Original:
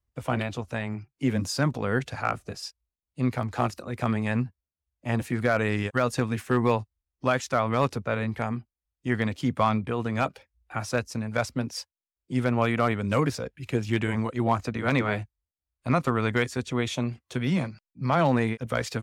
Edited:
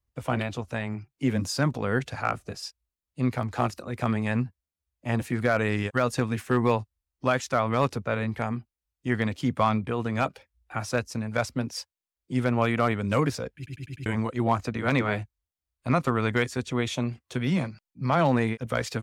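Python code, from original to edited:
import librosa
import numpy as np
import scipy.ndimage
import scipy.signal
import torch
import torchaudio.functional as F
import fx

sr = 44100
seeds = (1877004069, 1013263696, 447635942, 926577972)

y = fx.edit(x, sr, fx.stutter_over(start_s=13.56, slice_s=0.1, count=5), tone=tone)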